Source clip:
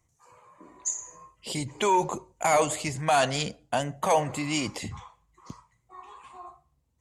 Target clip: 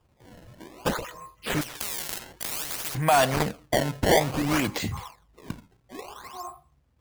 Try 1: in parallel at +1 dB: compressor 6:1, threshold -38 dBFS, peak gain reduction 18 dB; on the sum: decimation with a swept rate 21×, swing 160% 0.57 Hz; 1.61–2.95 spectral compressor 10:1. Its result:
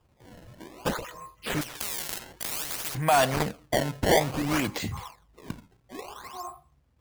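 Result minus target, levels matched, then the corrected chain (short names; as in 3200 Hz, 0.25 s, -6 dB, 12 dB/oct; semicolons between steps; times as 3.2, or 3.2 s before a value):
compressor: peak gain reduction +6.5 dB
in parallel at +1 dB: compressor 6:1, threshold -30 dBFS, peak gain reduction 11.5 dB; on the sum: decimation with a swept rate 21×, swing 160% 0.57 Hz; 1.61–2.95 spectral compressor 10:1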